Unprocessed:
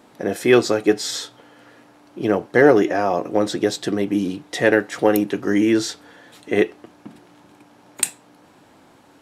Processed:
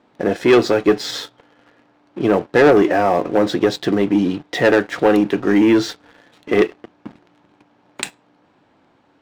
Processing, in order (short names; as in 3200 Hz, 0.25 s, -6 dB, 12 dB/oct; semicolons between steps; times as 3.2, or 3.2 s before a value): LPF 3900 Hz 12 dB/oct; sample leveller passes 2; gain -2 dB